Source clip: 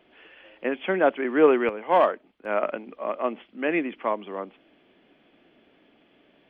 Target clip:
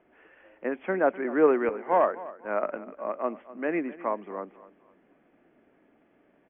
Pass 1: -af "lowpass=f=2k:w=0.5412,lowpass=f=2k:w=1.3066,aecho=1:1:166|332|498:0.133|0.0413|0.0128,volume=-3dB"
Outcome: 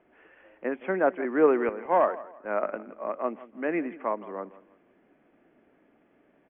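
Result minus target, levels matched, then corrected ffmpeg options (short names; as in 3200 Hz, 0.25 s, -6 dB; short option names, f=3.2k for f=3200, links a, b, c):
echo 86 ms early
-af "lowpass=f=2k:w=0.5412,lowpass=f=2k:w=1.3066,aecho=1:1:252|504|756:0.133|0.0413|0.0128,volume=-3dB"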